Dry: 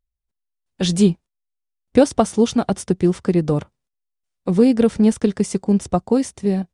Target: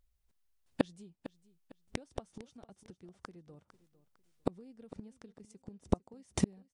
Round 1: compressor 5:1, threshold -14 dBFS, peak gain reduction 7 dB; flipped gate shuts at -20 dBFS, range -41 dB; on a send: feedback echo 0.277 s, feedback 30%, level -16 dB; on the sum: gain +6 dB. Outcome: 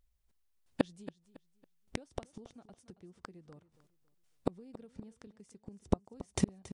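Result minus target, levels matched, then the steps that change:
echo 0.176 s early
change: feedback echo 0.453 s, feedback 30%, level -16 dB

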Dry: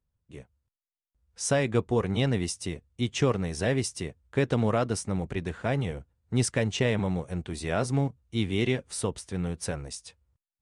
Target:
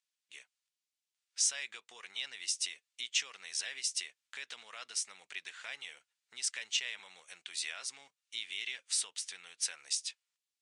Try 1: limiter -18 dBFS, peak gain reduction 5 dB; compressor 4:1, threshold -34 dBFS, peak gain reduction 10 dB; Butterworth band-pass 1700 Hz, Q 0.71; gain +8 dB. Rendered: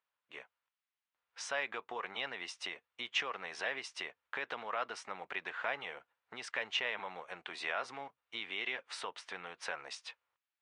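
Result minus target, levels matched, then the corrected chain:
2000 Hz band +7.0 dB
limiter -18 dBFS, peak gain reduction 5 dB; compressor 4:1, threshold -34 dBFS, peak gain reduction 10 dB; Butterworth band-pass 4600 Hz, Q 0.71; gain +8 dB

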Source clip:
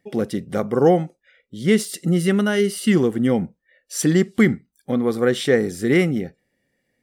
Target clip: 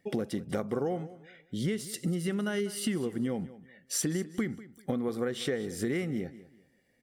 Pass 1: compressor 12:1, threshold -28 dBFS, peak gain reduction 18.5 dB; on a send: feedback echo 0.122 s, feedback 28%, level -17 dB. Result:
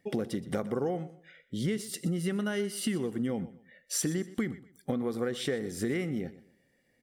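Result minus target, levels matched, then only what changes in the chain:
echo 72 ms early
change: feedback echo 0.194 s, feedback 28%, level -17 dB

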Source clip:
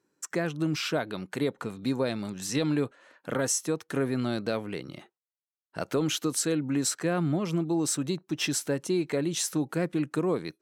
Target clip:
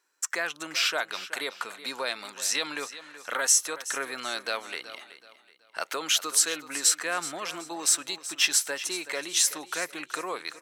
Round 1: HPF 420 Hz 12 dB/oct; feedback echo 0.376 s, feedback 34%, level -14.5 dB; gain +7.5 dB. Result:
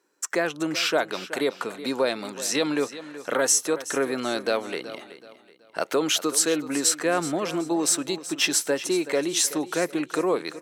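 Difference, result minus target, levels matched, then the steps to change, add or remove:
500 Hz band +9.5 dB
change: HPF 1100 Hz 12 dB/oct

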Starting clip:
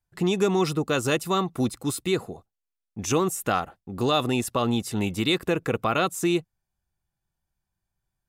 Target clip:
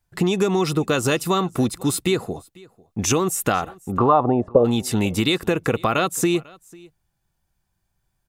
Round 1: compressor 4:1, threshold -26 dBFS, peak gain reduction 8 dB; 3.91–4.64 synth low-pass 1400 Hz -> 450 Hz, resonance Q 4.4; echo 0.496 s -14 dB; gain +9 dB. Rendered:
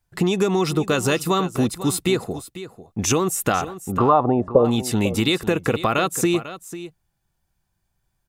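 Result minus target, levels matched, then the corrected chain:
echo-to-direct +10.5 dB
compressor 4:1, threshold -26 dBFS, peak gain reduction 8 dB; 3.91–4.64 synth low-pass 1400 Hz -> 450 Hz, resonance Q 4.4; echo 0.496 s -24.5 dB; gain +9 dB

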